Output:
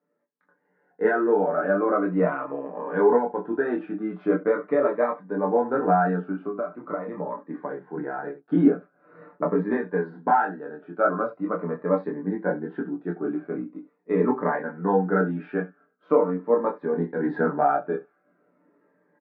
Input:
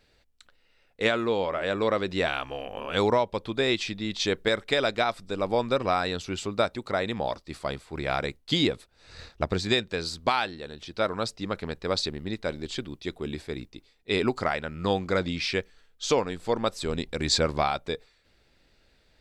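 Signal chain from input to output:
ambience of single reflections 17 ms −8.5 dB, 66 ms −16.5 dB
multi-voice chorus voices 4, 0.15 Hz, delay 25 ms, depth 4.3 ms
0:06.21–0:08.44: downward compressor 12 to 1, threshold −34 dBFS, peak gain reduction 13.5 dB
Chebyshev band-pass filter 180–1,600 Hz, order 4
comb filter 6.8 ms, depth 59%
automatic gain control gain up to 12.5 dB
phaser whose notches keep moving one way falling 0.43 Hz
level −3 dB

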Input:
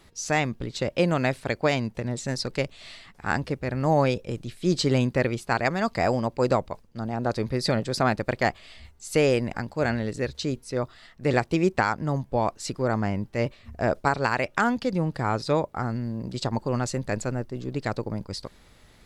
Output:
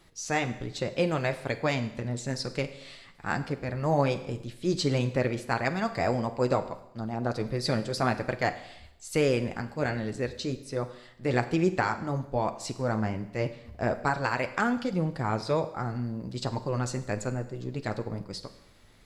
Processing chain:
flanger 1.2 Hz, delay 5.5 ms, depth 4.4 ms, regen −45%
four-comb reverb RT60 0.82 s, combs from 33 ms, DRR 11.5 dB

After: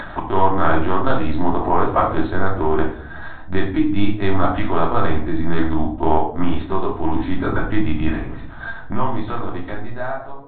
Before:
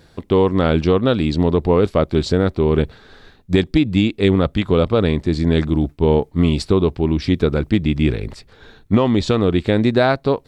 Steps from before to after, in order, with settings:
fade-out on the ending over 2.43 s
0:06.43–0:06.99: low-shelf EQ 120 Hz −8.5 dB
linear-prediction vocoder at 8 kHz pitch kept
rectangular room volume 540 cubic metres, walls furnished, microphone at 2.8 metres
upward compression, threshold −9 dBFS
flat-topped bell 1,100 Hz +13 dB
level −10.5 dB

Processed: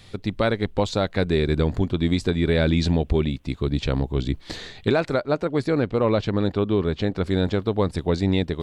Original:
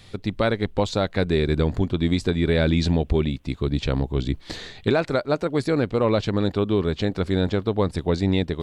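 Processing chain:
0:05.14–0:07.24: high-shelf EQ 5,900 Hz −9 dB

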